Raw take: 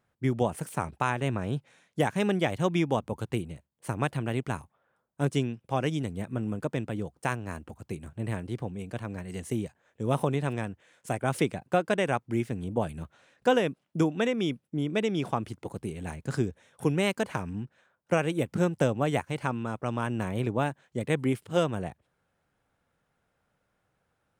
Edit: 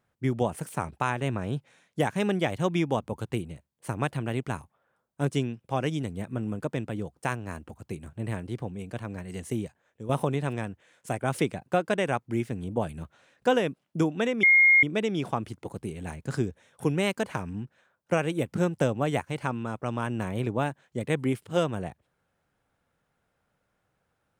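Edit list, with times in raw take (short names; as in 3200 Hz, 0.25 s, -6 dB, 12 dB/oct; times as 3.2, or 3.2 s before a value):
9.54–10.09 fade out equal-power, to -9.5 dB
14.43–14.83 bleep 2140 Hz -14.5 dBFS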